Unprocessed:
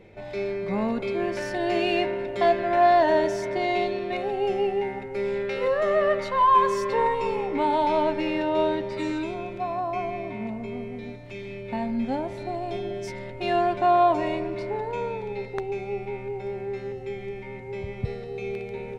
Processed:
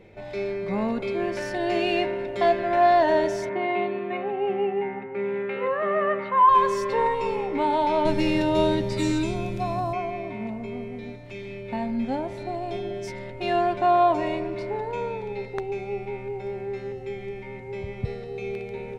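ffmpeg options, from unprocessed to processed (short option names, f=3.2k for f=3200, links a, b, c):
-filter_complex "[0:a]asettb=1/sr,asplit=3[a][b][c];[a]atrim=end=3.494[d];[b]atrim=start=3.49:end=6.49,asetpts=PTS-STARTPTS,afade=t=in:d=0.004:c=qsin,afade=t=out:st=2.996:d=0.004:c=qsin,highpass=170,equalizer=f=190:t=q:w=4:g=5,equalizer=f=580:t=q:w=4:g=-5,equalizer=f=1.1k:t=q:w=4:g=5,lowpass=f=2.7k:w=0.5412,lowpass=f=2.7k:w=1.3066[e];[c]atrim=start=6.486[f];[d][e]acrossfade=d=0.004:c1=hsin:c2=qsin[g];[g][f]acrossfade=d=0.004:c1=qsin:c2=hsin,asettb=1/sr,asplit=3[h][i][j];[h]atrim=end=8.054[k];[i]atrim=start=8.05:end=9.93,asetpts=PTS-STARTPTS,afade=t=in:d=0.004:c=qsin,afade=t=out:st=1.876:d=0.004:c=qsin,bass=f=250:g=13,treble=f=4k:g=15[l];[j]atrim=start=9.926[m];[k][l]acrossfade=d=0.004:c1=hsin:c2=qsin[n];[n][m]acrossfade=d=0.004:c1=qsin:c2=hsin"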